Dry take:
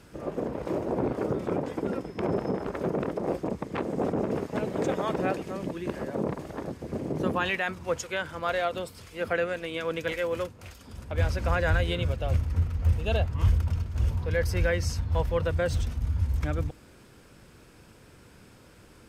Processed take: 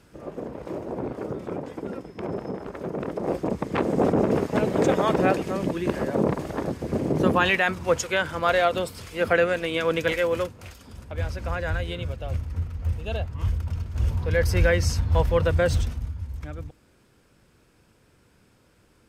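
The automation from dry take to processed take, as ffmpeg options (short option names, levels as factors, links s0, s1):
-af "volume=5.96,afade=t=in:st=2.89:d=0.96:silence=0.316228,afade=t=out:st=9.98:d=1.23:silence=0.316228,afade=t=in:st=13.59:d=0.98:silence=0.375837,afade=t=out:st=15.71:d=0.44:silence=0.237137"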